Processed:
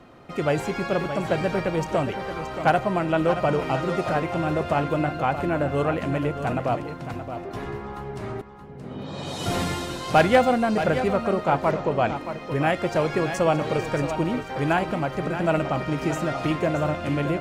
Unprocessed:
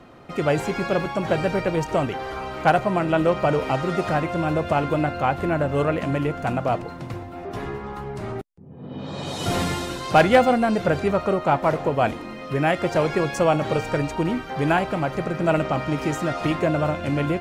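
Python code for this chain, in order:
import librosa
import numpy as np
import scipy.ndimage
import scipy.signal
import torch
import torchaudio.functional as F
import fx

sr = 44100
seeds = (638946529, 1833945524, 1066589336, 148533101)

y = fx.steep_lowpass(x, sr, hz=7200.0, slope=36, at=(11.71, 12.16))
y = y + 10.0 ** (-10.0 / 20.0) * np.pad(y, (int(624 * sr / 1000.0), 0))[:len(y)]
y = y * librosa.db_to_amplitude(-2.0)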